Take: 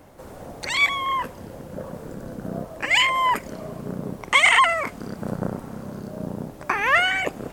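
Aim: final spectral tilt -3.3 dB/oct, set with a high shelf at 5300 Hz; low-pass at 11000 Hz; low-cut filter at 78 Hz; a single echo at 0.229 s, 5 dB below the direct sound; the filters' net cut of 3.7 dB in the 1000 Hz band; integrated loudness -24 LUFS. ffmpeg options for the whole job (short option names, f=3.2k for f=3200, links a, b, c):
-af "highpass=78,lowpass=11k,equalizer=f=1k:t=o:g=-4,highshelf=f=5.3k:g=-5,aecho=1:1:229:0.562,volume=-1.5dB"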